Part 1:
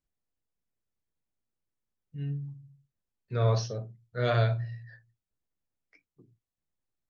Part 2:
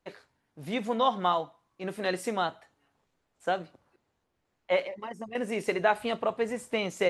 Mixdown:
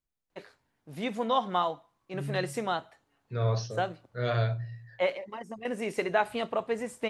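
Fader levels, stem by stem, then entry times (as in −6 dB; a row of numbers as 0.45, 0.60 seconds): −2.5, −1.5 decibels; 0.00, 0.30 seconds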